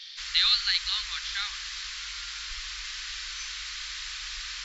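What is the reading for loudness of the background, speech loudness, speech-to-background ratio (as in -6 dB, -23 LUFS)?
-34.5 LUFS, -25.5 LUFS, 9.0 dB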